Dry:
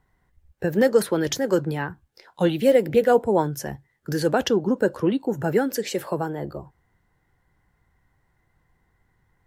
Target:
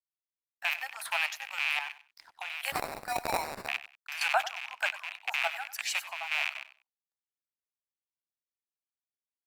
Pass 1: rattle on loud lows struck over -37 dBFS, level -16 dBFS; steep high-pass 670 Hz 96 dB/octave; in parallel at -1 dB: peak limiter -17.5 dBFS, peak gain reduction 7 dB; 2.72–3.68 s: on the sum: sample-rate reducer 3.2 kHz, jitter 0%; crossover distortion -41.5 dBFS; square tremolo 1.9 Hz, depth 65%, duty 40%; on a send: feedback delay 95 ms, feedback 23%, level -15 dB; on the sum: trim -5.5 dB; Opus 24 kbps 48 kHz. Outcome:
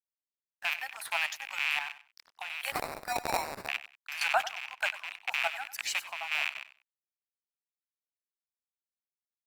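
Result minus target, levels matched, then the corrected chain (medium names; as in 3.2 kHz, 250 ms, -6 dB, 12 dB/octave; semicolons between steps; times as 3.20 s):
crossover distortion: distortion +8 dB
rattle on loud lows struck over -37 dBFS, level -16 dBFS; steep high-pass 670 Hz 96 dB/octave; in parallel at -1 dB: peak limiter -17.5 dBFS, peak gain reduction 7 dB; 2.72–3.68 s: on the sum: sample-rate reducer 3.2 kHz, jitter 0%; crossover distortion -51 dBFS; square tremolo 1.9 Hz, depth 65%, duty 40%; on a send: feedback delay 95 ms, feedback 23%, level -15 dB; on the sum: trim -5.5 dB; Opus 24 kbps 48 kHz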